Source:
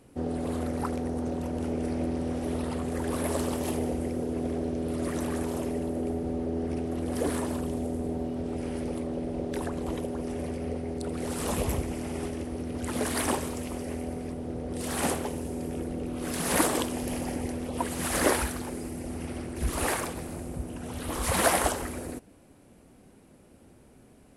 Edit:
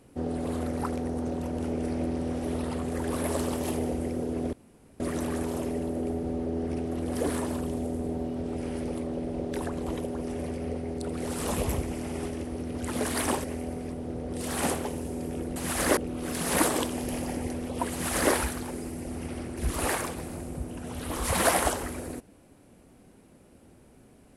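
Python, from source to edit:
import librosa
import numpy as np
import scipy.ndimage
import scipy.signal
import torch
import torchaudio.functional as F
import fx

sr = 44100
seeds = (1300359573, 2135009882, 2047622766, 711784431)

y = fx.edit(x, sr, fx.room_tone_fill(start_s=4.53, length_s=0.47),
    fx.cut(start_s=13.44, length_s=0.4),
    fx.duplicate(start_s=17.91, length_s=0.41, to_s=15.96), tone=tone)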